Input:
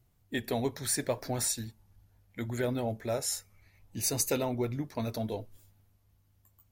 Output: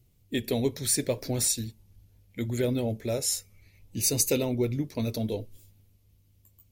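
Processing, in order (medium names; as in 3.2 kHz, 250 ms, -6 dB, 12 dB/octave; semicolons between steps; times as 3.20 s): high-order bell 1.1 kHz -10 dB; trim +5 dB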